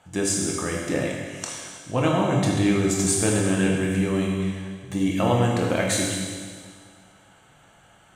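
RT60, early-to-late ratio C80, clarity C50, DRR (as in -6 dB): 1.8 s, 2.5 dB, 0.5 dB, -2.5 dB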